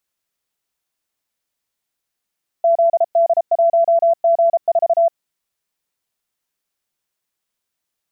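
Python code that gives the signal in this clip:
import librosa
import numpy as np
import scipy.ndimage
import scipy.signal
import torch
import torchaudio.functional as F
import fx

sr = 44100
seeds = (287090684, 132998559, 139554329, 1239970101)

y = fx.morse(sr, text='ZD1G4', wpm=33, hz=673.0, level_db=-10.0)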